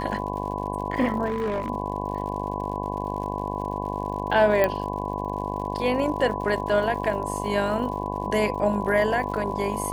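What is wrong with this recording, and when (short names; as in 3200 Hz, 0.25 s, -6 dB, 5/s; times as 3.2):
buzz 50 Hz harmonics 22 -31 dBFS
crackle 95/s -35 dBFS
tone 1000 Hz -33 dBFS
1.25–1.7 clipped -22.5 dBFS
4.64 pop -9 dBFS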